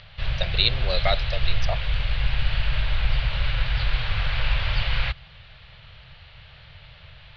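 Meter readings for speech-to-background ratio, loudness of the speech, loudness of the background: 0.5 dB, -26.5 LUFS, -27.0 LUFS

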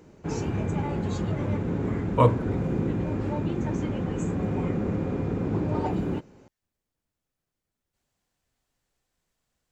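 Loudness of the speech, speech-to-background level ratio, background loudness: -24.0 LUFS, 5.0 dB, -29.0 LUFS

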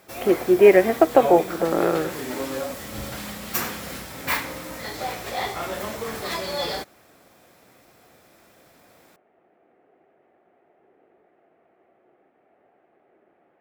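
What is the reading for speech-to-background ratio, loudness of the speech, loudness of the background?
11.5 dB, -18.5 LUFS, -30.0 LUFS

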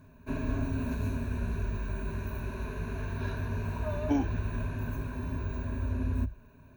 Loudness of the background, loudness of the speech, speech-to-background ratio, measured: -35.0 LUFS, -33.0 LUFS, 2.0 dB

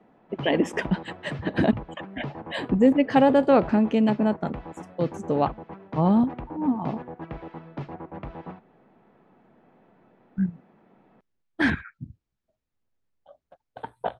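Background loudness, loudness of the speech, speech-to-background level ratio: -39.0 LUFS, -24.0 LUFS, 15.0 dB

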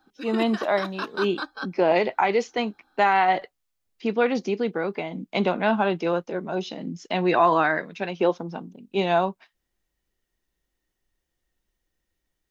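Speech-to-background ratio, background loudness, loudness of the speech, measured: 9.5 dB, -34.0 LUFS, -24.5 LUFS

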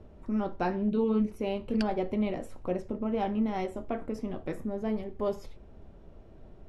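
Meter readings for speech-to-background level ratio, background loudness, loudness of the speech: 14.0 dB, -46.0 LUFS, -32.0 LUFS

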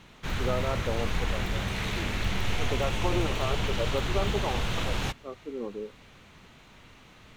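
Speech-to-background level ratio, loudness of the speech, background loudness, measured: -4.5 dB, -35.5 LUFS, -31.0 LUFS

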